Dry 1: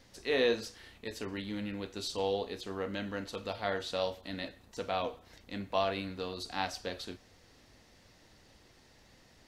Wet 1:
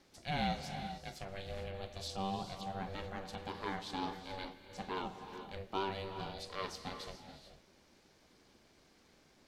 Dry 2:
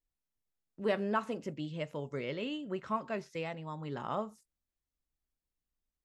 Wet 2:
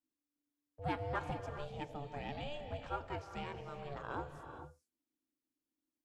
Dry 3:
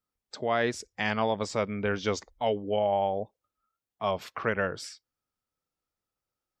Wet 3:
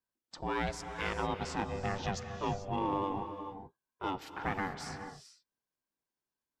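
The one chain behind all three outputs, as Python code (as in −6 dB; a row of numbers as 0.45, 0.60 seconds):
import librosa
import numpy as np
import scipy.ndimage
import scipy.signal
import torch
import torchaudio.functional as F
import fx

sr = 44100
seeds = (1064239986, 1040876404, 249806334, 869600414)

p1 = np.clip(10.0 ** (29.5 / 20.0) * x, -1.0, 1.0) / 10.0 ** (29.5 / 20.0)
p2 = x + (p1 * 10.0 ** (-9.0 / 20.0))
p3 = p2 * np.sin(2.0 * np.pi * 290.0 * np.arange(len(p2)) / sr)
p4 = fx.rev_gated(p3, sr, seeds[0], gate_ms=470, shape='rising', drr_db=8.0)
y = p4 * 10.0 ** (-5.5 / 20.0)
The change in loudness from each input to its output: −6.0, −6.0, −7.0 LU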